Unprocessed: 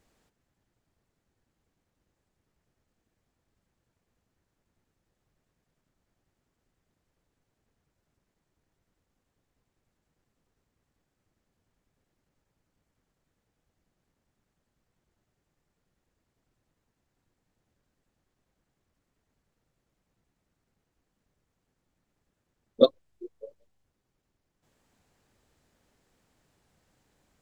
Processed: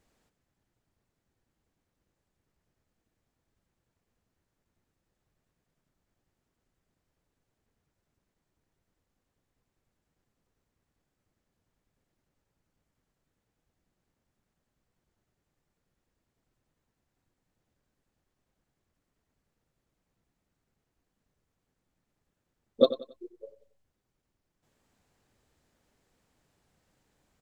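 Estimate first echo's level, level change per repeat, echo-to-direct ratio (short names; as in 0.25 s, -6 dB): -14.0 dB, -9.5 dB, -13.5 dB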